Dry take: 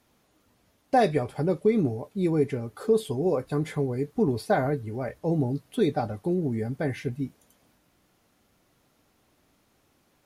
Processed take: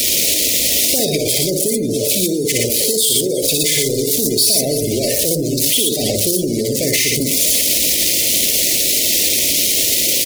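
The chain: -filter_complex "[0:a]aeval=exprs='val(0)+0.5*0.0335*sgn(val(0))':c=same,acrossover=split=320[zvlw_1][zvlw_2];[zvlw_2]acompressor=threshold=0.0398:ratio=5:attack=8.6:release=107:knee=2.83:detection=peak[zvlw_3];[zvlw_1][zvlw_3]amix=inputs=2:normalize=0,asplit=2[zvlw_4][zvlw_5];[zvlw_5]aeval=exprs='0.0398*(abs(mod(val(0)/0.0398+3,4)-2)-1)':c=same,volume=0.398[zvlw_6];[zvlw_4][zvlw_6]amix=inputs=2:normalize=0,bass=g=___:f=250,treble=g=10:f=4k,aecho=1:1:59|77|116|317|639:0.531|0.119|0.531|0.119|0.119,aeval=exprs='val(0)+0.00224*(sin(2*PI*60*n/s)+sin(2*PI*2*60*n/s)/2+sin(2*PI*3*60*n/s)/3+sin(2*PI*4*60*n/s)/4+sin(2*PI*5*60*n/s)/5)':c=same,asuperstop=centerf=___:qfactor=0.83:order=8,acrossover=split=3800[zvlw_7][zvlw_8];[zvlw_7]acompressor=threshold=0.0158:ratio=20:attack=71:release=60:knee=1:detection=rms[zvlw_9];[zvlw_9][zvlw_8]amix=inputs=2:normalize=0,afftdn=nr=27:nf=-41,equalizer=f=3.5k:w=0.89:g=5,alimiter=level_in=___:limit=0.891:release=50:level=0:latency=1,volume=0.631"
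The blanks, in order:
-12, 1100, 11.2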